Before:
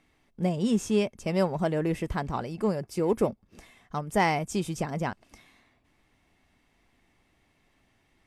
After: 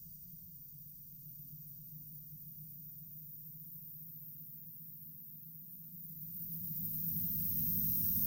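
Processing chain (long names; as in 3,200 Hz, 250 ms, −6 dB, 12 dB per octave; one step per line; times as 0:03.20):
feedback delay that plays each chunk backwards 127 ms, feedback 44%, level −9 dB
bad sample-rate conversion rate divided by 3×, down filtered, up zero stuff
gate with flip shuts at −15 dBFS, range −32 dB
extreme stretch with random phases 16×, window 0.25 s, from 0:04.82
inverse Chebyshev band-stop filter 450–2,100 Hz, stop band 50 dB
on a send: echo that builds up and dies away 133 ms, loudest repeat 8, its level −9 dB
on the sum: level +2.5 dB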